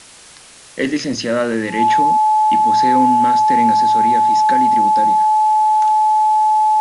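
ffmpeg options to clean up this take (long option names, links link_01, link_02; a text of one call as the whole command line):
ffmpeg -i in.wav -af "bandreject=frequency=860:width=30,afwtdn=0.011" out.wav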